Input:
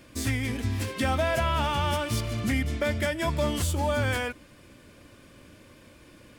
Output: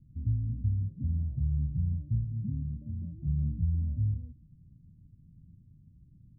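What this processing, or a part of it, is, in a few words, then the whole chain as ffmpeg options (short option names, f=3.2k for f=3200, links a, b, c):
the neighbour's flat through the wall: -filter_complex "[0:a]asettb=1/sr,asplit=3[a][b][c];[a]atrim=end=2.244[d];[b]atrim=start=2.24:end=3.18,asetpts=PTS-STARTPTS,afade=t=in:d=0.004:c=qsin,afade=t=out:st=0.936:d=0.004:c=qsin,highpass=110[e];[c]atrim=start=3.176[f];[d][e]acrossfade=d=0.004:c1=hsin:c2=qsin[g];[g][f]acrossfade=d=0.004:c1=qsin:c2=hsin,lowpass=f=160:w=0.5412,lowpass=f=160:w=1.3066,equalizer=f=160:t=o:w=0.56:g=7"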